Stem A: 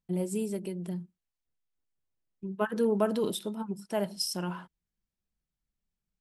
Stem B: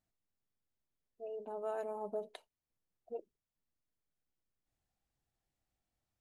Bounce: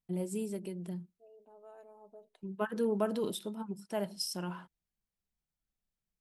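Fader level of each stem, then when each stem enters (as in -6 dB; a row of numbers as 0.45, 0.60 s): -4.5, -15.0 dB; 0.00, 0.00 s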